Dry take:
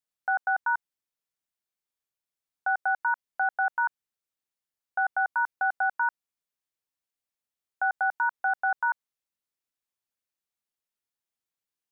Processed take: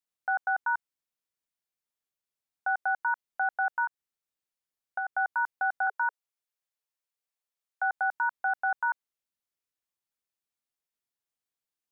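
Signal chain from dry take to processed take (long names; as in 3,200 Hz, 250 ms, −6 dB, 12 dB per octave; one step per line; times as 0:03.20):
0:03.84–0:05.15: downward compressor, threshold −27 dBFS, peak gain reduction 5.5 dB
0:05.87–0:07.91: Butterworth high-pass 410 Hz 96 dB per octave
level −2 dB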